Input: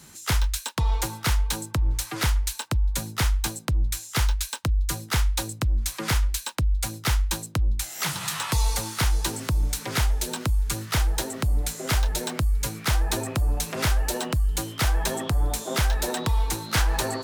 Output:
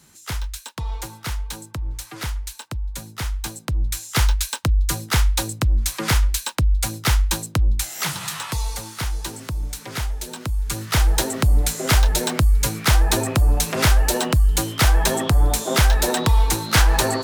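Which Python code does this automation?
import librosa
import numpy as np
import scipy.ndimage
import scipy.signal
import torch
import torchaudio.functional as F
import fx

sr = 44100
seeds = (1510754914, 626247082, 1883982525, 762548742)

y = fx.gain(x, sr, db=fx.line((3.17, -4.5), (4.18, 5.0), (7.81, 5.0), (8.69, -3.0), (10.35, -3.0), (11.12, 7.0)))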